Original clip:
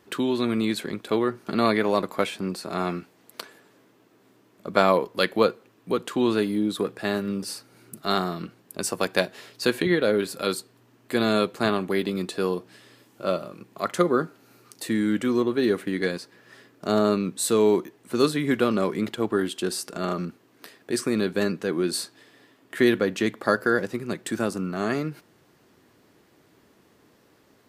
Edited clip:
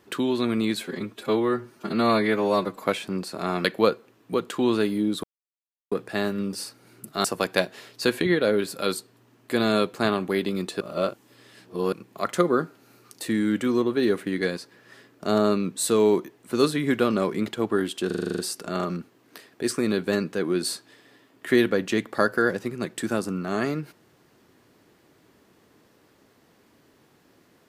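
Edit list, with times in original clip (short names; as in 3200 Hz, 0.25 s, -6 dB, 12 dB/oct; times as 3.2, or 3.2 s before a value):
0.77–2.14 stretch 1.5×
2.96–5.22 cut
6.81 insert silence 0.68 s
8.14–8.85 cut
12.41–13.53 reverse
19.67 stutter 0.04 s, 9 plays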